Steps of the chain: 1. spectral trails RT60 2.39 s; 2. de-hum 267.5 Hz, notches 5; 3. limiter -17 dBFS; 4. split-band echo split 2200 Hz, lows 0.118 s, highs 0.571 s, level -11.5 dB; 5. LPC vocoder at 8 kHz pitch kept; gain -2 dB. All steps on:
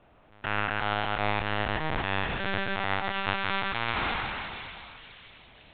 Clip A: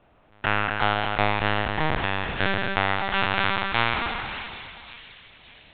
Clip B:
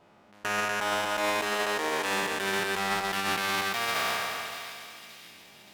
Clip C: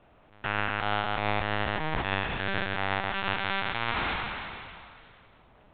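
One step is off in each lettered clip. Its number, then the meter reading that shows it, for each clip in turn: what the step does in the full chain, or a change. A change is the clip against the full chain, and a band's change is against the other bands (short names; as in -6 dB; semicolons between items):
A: 3, mean gain reduction 3.0 dB; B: 5, 125 Hz band -11.0 dB; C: 4, momentary loudness spread change -4 LU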